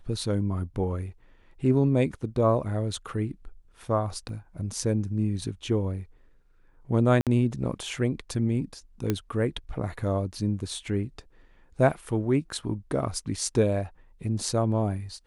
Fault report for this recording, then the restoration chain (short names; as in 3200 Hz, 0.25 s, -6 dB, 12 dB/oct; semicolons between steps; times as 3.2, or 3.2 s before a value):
4.29 gap 2.5 ms
7.21–7.27 gap 57 ms
9.1 pop -12 dBFS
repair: de-click; interpolate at 4.29, 2.5 ms; interpolate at 7.21, 57 ms